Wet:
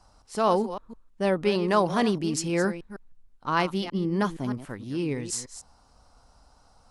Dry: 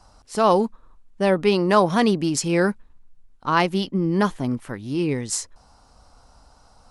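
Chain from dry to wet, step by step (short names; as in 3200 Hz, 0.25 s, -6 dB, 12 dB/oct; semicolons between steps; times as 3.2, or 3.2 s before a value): reverse delay 0.156 s, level -12 dB; gain -5.5 dB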